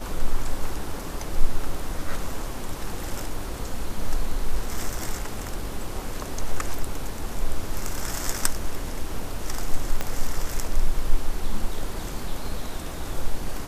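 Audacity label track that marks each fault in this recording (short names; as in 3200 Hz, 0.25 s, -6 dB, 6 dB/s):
10.010000	10.010000	pop -11 dBFS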